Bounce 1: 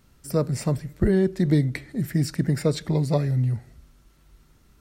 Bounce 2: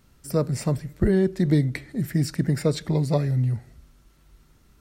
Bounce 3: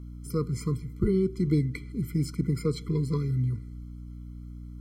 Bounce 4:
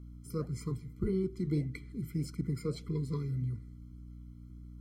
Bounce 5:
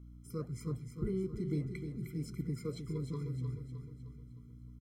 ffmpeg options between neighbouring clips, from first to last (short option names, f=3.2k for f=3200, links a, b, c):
-af anull
-af "aeval=exprs='val(0)+0.0178*(sin(2*PI*60*n/s)+sin(2*PI*2*60*n/s)/2+sin(2*PI*3*60*n/s)/3+sin(2*PI*4*60*n/s)/4+sin(2*PI*5*60*n/s)/5)':c=same,afftfilt=real='re*eq(mod(floor(b*sr/1024/490),2),0)':imag='im*eq(mod(floor(b*sr/1024/490),2),0)':win_size=1024:overlap=0.75,volume=-4.5dB"
-af "acontrast=26,flanger=delay=0.5:depth=8.9:regen=-77:speed=1.7:shape=sinusoidal,volume=-8dB"
-af "asuperstop=centerf=4600:order=12:qfactor=6.5,aecho=1:1:308|616|924|1232|1540|1848:0.398|0.195|0.0956|0.0468|0.023|0.0112,volume=-4dB"